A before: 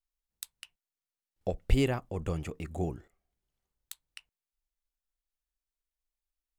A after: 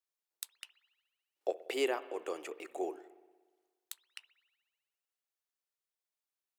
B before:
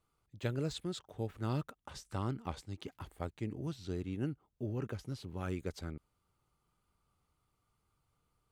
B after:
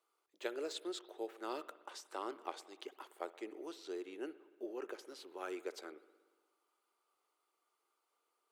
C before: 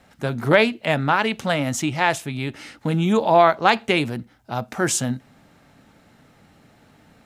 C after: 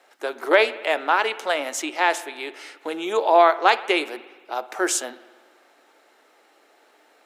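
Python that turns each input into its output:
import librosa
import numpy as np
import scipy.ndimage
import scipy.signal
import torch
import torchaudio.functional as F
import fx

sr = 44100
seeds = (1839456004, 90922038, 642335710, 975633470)

y = scipy.signal.sosfilt(scipy.signal.ellip(4, 1.0, 80, 350.0, 'highpass', fs=sr, output='sos'), x)
y = fx.rev_spring(y, sr, rt60_s=1.4, pass_ms=(59,), chirp_ms=70, drr_db=15.5)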